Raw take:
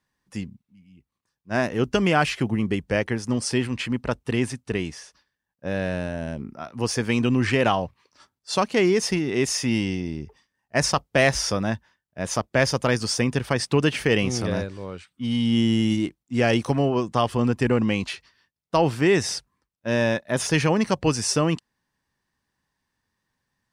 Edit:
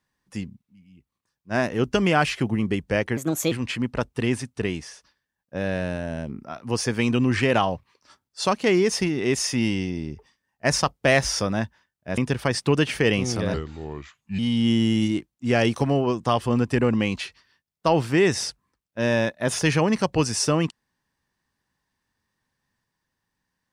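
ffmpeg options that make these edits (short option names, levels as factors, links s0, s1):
-filter_complex "[0:a]asplit=6[s0][s1][s2][s3][s4][s5];[s0]atrim=end=3.174[s6];[s1]atrim=start=3.17:end=3.62,asetpts=PTS-STARTPTS,asetrate=57330,aresample=44100,atrim=end_sample=15265,asetpts=PTS-STARTPTS[s7];[s2]atrim=start=3.616:end=12.282[s8];[s3]atrim=start=13.228:end=14.594[s9];[s4]atrim=start=14.59:end=15.27,asetpts=PTS-STARTPTS,asetrate=35280,aresample=44100[s10];[s5]atrim=start=15.266[s11];[s6][s7]acrossfade=d=0.004:c1=hsin:c2=hsin[s12];[s12][s8]acrossfade=d=0.004:c1=hsin:c2=hsin[s13];[s13][s9]acrossfade=d=0.004:c1=hsin:c2=hsin[s14];[s14][s10]acrossfade=d=0.004:c1=hsin:c2=hsin[s15];[s15][s11]acrossfade=d=0.004:c1=hsin:c2=hsin"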